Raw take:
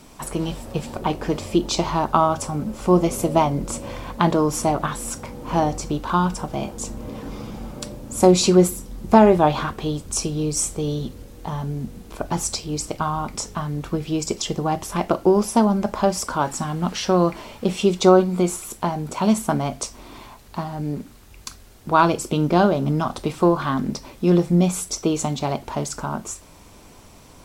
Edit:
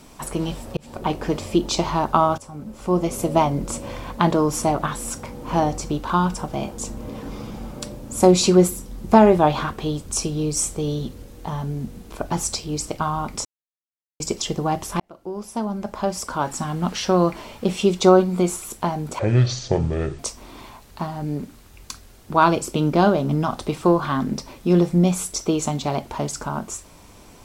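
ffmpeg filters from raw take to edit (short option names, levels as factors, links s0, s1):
-filter_complex "[0:a]asplit=8[s0][s1][s2][s3][s4][s5][s6][s7];[s0]atrim=end=0.77,asetpts=PTS-STARTPTS,afade=t=out:st=0.766:d=0.004:c=hsin[s8];[s1]atrim=start=0.77:end=2.38,asetpts=PTS-STARTPTS,afade=t=in:d=0.4:c=qsin,afade=t=out:st=1.606:d=0.004:c=hsin:silence=0.177828[s9];[s2]atrim=start=2.38:end=13.45,asetpts=PTS-STARTPTS,afade=t=in:d=1.03:silence=0.177828,afade=t=out:st=11.066:d=0.004:c=hsin[s10];[s3]atrim=start=13.45:end=14.2,asetpts=PTS-STARTPTS,volume=0[s11];[s4]atrim=start=14.2:end=15,asetpts=PTS-STARTPTS,afade=t=in:d=0.004:c=hsin,afade=t=out:st=0.796:d=0.004:c=hsin[s12];[s5]atrim=start=15:end=19.194,asetpts=PTS-STARTPTS,afade=t=in:d=1.75[s13];[s6]atrim=start=19.19:end=19.76,asetpts=PTS-STARTPTS,asetrate=25137,aresample=44100,atrim=end_sample=44100,asetpts=PTS-STARTPTS[s14];[s7]atrim=start=19.756[s15];[s8][s9][s10][s11][s12][s13]concat=n=6:v=0:a=1[s16];[s16][s14]acrossfade=d=0.004:c1=hsin:c2=hsin[s17];[s17][s15]acrossfade=d=0.004:c1=hsin:c2=hsin"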